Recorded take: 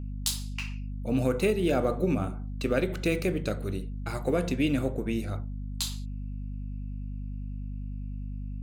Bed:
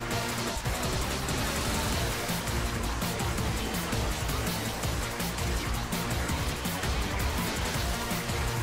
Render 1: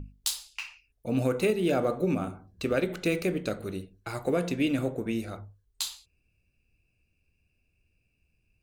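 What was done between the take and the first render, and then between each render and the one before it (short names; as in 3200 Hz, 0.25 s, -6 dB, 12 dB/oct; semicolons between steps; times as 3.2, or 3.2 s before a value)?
notches 50/100/150/200/250 Hz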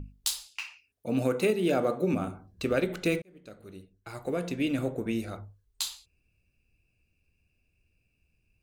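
0.46–2.14 HPF 130 Hz; 3.22–5.05 fade in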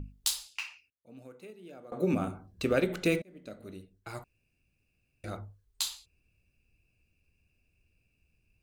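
0.49–2.33 dip -23 dB, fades 0.41 s logarithmic; 3.2–3.74 small resonant body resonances 250/610/2000/3900 Hz, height 8 dB; 4.24–5.24 room tone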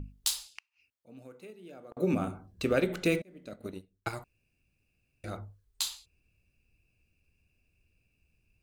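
0.49–1.97 flipped gate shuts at -33 dBFS, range -39 dB; 3.52–4.15 transient shaper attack +11 dB, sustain -9 dB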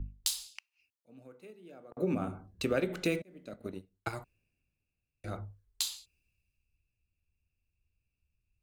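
compressor 2:1, threshold -35 dBFS, peak gain reduction 7.5 dB; three-band expander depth 40%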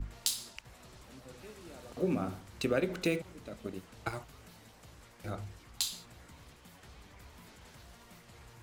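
add bed -24.5 dB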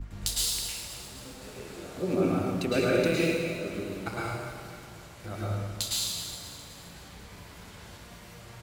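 feedback echo 0.262 s, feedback 55%, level -13.5 dB; plate-style reverb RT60 1.5 s, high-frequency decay 1×, pre-delay 95 ms, DRR -6.5 dB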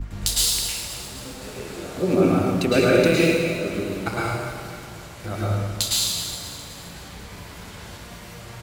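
gain +8 dB; limiter -3 dBFS, peak gain reduction 1 dB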